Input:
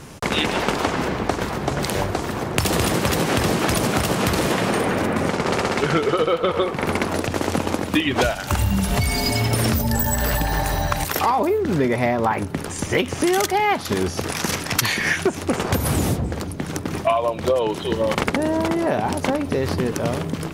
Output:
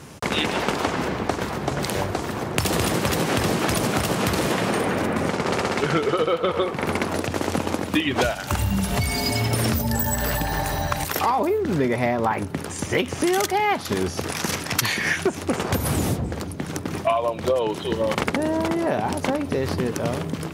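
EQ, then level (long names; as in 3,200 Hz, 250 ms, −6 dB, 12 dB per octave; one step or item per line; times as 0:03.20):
high-pass filter 59 Hz
−2.0 dB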